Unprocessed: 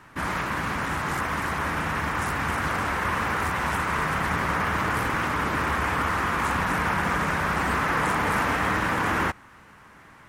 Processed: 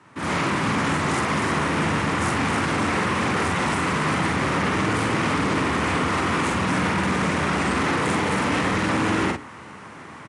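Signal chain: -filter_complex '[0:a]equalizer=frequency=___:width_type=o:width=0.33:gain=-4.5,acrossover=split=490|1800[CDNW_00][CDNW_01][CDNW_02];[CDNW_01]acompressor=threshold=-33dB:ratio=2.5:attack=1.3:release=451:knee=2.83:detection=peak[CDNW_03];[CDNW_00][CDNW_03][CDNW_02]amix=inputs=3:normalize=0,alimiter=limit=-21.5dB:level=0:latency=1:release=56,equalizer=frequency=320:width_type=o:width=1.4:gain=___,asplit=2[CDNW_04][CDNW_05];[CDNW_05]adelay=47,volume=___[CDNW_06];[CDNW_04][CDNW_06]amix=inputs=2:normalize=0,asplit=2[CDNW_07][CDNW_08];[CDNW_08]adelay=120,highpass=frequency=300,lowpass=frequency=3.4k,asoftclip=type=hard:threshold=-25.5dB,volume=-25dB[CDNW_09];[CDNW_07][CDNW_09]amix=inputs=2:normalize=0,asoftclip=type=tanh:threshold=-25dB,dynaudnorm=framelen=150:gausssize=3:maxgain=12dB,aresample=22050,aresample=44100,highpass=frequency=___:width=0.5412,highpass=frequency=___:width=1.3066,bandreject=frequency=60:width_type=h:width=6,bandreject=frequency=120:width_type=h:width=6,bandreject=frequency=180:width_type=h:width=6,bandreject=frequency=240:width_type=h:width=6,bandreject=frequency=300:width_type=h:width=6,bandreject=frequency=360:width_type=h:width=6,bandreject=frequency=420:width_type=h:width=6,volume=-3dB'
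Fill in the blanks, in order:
1.6k, 5, -5.5dB, 81, 81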